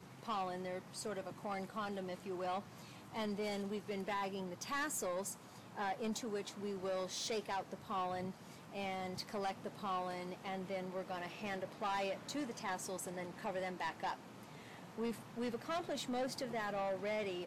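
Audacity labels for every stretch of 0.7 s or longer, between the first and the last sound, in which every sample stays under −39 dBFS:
14.130000	14.980000	silence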